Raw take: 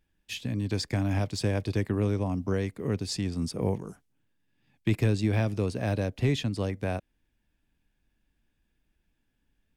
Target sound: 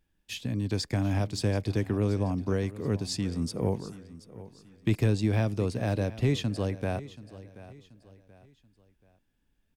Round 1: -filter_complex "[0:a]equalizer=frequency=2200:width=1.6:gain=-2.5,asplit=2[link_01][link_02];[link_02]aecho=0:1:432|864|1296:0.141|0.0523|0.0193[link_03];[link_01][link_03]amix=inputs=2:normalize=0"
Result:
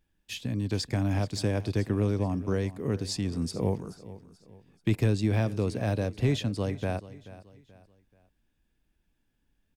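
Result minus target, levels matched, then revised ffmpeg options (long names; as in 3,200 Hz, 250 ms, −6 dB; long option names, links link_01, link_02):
echo 299 ms early
-filter_complex "[0:a]equalizer=frequency=2200:width=1.6:gain=-2.5,asplit=2[link_01][link_02];[link_02]aecho=0:1:731|1462|2193:0.141|0.0523|0.0193[link_03];[link_01][link_03]amix=inputs=2:normalize=0"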